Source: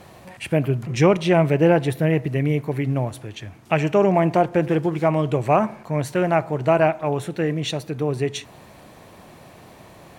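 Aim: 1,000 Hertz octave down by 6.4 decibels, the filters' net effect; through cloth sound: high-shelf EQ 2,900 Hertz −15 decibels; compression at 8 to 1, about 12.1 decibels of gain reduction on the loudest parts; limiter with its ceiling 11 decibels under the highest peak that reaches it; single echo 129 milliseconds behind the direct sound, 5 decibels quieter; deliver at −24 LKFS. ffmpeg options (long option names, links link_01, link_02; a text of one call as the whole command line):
ffmpeg -i in.wav -af "equalizer=frequency=1000:width_type=o:gain=-8,acompressor=threshold=-25dB:ratio=8,alimiter=limit=-23dB:level=0:latency=1,highshelf=frequency=2900:gain=-15,aecho=1:1:129:0.562,volume=8.5dB" out.wav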